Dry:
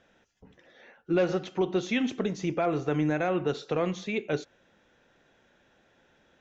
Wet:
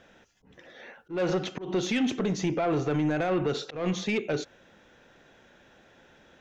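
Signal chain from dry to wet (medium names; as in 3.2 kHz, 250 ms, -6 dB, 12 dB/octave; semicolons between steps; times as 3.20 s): peak limiter -23 dBFS, peak gain reduction 7 dB; saturation -26.5 dBFS, distortion -17 dB; slow attack 164 ms; trim +7 dB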